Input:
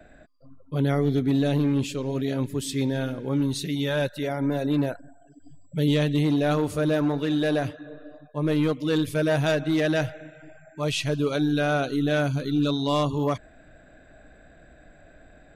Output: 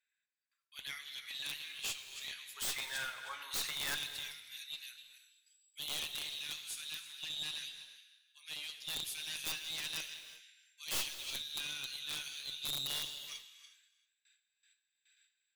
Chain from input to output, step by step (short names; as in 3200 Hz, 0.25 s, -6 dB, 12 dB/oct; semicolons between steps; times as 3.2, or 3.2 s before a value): regenerating reverse delay 0.157 s, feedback 41%, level -11.5 dB; gate with hold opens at -39 dBFS; inverse Chebyshev high-pass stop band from 370 Hz, stop band 80 dB, from 2.56 s stop band from 190 Hz, from 3.94 s stop band from 480 Hz; one-sided clip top -38 dBFS; flange 1 Hz, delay 5.3 ms, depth 6.2 ms, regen -76%; wrapped overs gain 33 dB; non-linear reverb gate 0.41 s flat, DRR 10 dB; gain +4.5 dB